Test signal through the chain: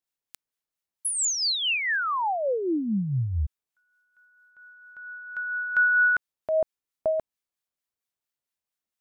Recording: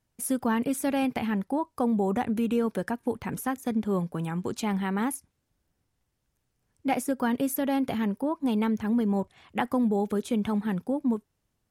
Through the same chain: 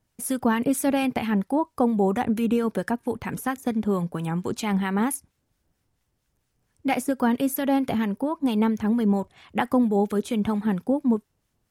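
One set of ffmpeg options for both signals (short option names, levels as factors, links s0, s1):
-filter_complex "[0:a]acrossover=split=1100[s0][s1];[s0]aeval=exprs='val(0)*(1-0.5/2+0.5/2*cos(2*PI*4.4*n/s))':c=same[s2];[s1]aeval=exprs='val(0)*(1-0.5/2-0.5/2*cos(2*PI*4.4*n/s))':c=same[s3];[s2][s3]amix=inputs=2:normalize=0,volume=2"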